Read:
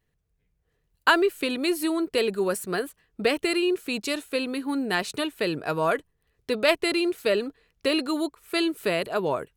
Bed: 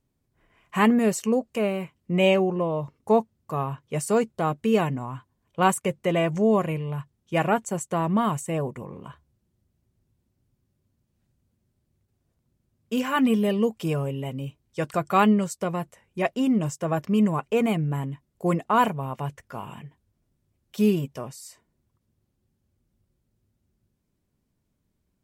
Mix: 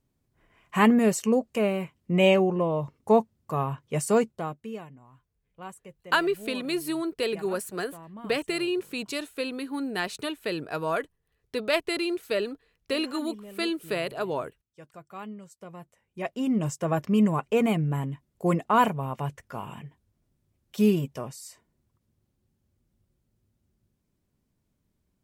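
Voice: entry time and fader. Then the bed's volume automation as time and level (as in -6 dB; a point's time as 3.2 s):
5.05 s, -4.0 dB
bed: 4.19 s 0 dB
4.9 s -21 dB
15.37 s -21 dB
16.7 s -0.5 dB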